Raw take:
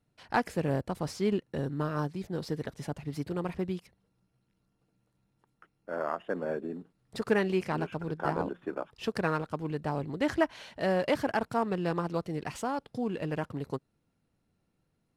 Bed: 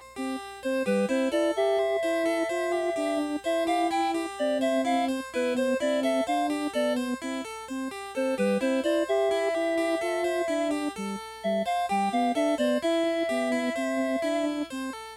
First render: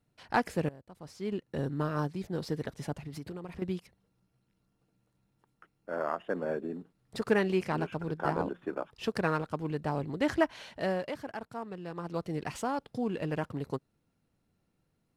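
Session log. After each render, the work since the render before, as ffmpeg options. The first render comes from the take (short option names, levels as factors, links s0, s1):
-filter_complex "[0:a]asettb=1/sr,asplit=3[s0][s1][s2];[s0]atrim=end=2.964[s3];[s1]atrim=start=2.96:end=3.62,asetpts=PTS-STARTPTS,afade=t=in:d=0.004:c=qsin,afade=t=out:st=0.656:d=0.004:c=qsin,acompressor=threshold=0.0158:ratio=12:attack=3.2:release=140:knee=1:detection=peak[s4];[s2]atrim=start=3.616[s5];[s3][s4]acrossfade=d=0.004:c1=hsin:c2=qsin[s6];[s6][s5]acrossfade=d=0.004:c1=qsin:c2=hsin,asplit=4[s7][s8][s9][s10];[s7]atrim=end=0.69,asetpts=PTS-STARTPTS,afade=t=out:st=0.686:d=0.004:c=hsin:silence=0.0794328[s11];[s8]atrim=start=0.69:end=11.12,asetpts=PTS-STARTPTS,afade=t=in:d=0.92:c=qua:silence=0.0794328,afade=t=out:st=10.05:d=0.38:silence=0.298538[s12];[s9]atrim=start=11.12:end=11.93,asetpts=PTS-STARTPTS,volume=0.299[s13];[s10]atrim=start=11.93,asetpts=PTS-STARTPTS,afade=t=in:d=0.38:silence=0.298538[s14];[s11][s12][s13][s14]concat=n=4:v=0:a=1"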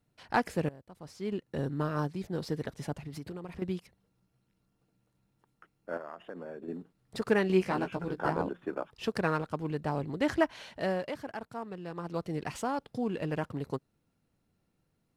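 -filter_complex "[0:a]asettb=1/sr,asplit=3[s0][s1][s2];[s0]atrim=end=5.974[s3];[s1]atrim=start=5.97:end=6.68,asetpts=PTS-STARTPTS,afade=t=in:d=0.004:c=qsin,afade=t=out:st=0.706:d=0.004:c=qsin,acompressor=threshold=0.0112:ratio=5:attack=3.2:release=140:knee=1:detection=peak[s4];[s2]atrim=start=6.676[s5];[s3][s4]acrossfade=d=0.004:c1=hsin:c2=qsin[s6];[s6][s5]acrossfade=d=0.004:c1=qsin:c2=hsin,asettb=1/sr,asplit=3[s7][s8][s9];[s7]atrim=end=7.484[s10];[s8]atrim=start=7.48:end=8.29,asetpts=PTS-STARTPTS,afade=t=in:d=0.004:c=qsin,afade=t=out:st=0.806:d=0.004:c=qsin,asplit=2[s11][s12];[s12]adelay=16,volume=0.596[s13];[s11][s13]amix=inputs=2:normalize=0,atrim=end_sample=35721[s14];[s9]atrim=start=8.286[s15];[s10][s14]acrossfade=d=0.004:c1=hsin:c2=qsin[s16];[s16][s15]acrossfade=d=0.004:c1=qsin:c2=hsin"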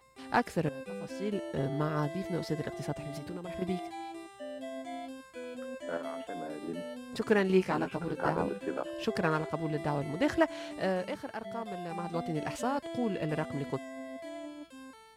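-filter_complex "[1:a]volume=0.168[s0];[0:a][s0]amix=inputs=2:normalize=0"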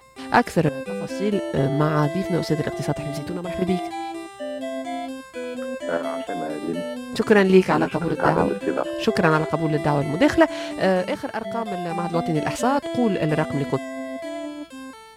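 -af "volume=3.76,alimiter=limit=0.708:level=0:latency=1"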